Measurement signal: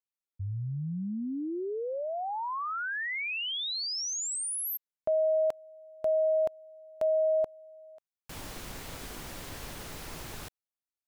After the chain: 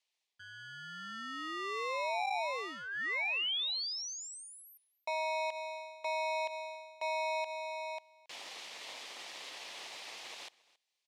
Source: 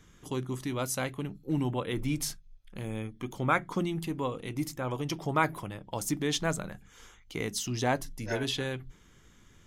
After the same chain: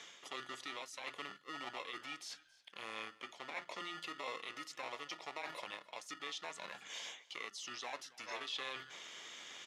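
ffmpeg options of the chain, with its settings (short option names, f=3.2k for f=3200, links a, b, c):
-filter_complex "[0:a]highshelf=f=2.4k:g=11,areverse,acompressor=threshold=-39dB:ratio=8:attack=0.28:release=310:knee=6:detection=rms,areverse,alimiter=level_in=17dB:limit=-24dB:level=0:latency=1:release=65,volume=-17dB,acrossover=split=1900[a][b];[a]acrusher=samples=28:mix=1:aa=0.000001[c];[c][b]amix=inputs=2:normalize=0,highpass=800,lowpass=3.4k,aecho=1:1:274:0.075,volume=13.5dB"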